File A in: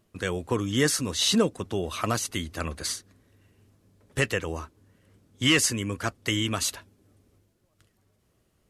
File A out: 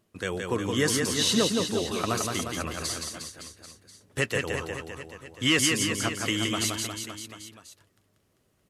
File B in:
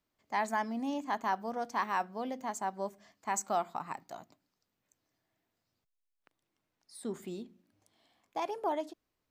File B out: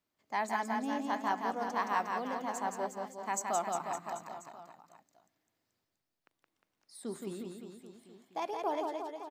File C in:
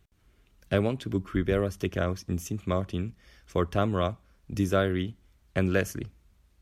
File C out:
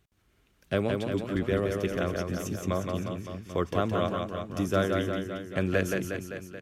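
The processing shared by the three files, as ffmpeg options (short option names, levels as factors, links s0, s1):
-af "lowshelf=f=63:g=-11.5,aecho=1:1:170|357|562.7|789|1038:0.631|0.398|0.251|0.158|0.1,volume=0.841"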